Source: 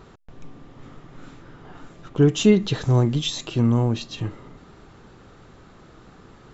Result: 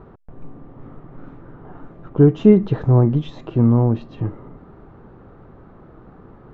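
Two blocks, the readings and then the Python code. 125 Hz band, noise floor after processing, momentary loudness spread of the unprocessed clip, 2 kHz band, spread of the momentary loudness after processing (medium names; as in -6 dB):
+4.5 dB, -46 dBFS, 14 LU, no reading, 15 LU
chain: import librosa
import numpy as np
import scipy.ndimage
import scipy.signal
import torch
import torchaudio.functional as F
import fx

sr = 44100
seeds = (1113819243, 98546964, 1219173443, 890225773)

y = scipy.signal.sosfilt(scipy.signal.butter(2, 1100.0, 'lowpass', fs=sr, output='sos'), x)
y = F.gain(torch.from_numpy(y), 4.5).numpy()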